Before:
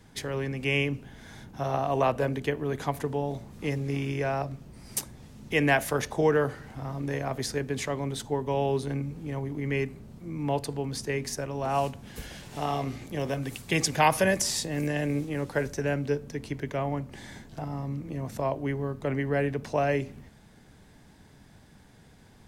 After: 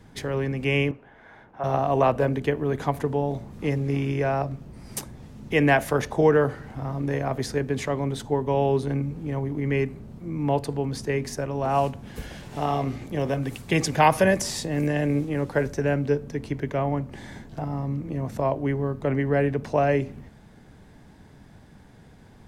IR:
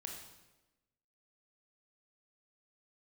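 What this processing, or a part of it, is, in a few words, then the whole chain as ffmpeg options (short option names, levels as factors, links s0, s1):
behind a face mask: -filter_complex "[0:a]asettb=1/sr,asplit=3[s0][s1][s2];[s0]atrim=end=0.914[s3];[s1]atrim=start=0.91:end=1.64,asetpts=PTS-STARTPTS,afade=t=in:d=0.004:c=qsin,afade=t=out:st=0.726:d=0.004:c=qsin,acrossover=split=430 2500:gain=0.141 1 0.0891[s4][s5][s6];[s4][s5][s6]amix=inputs=3:normalize=0[s7];[s2]atrim=start=1.636[s8];[s3][s7]acrossfade=d=0.004:c1=hsin:c2=qsin[s9];[s9][s8]acrossfade=d=0.004:c1=qsin:c2=hsin,highshelf=f=2400:g=-8,volume=1.78"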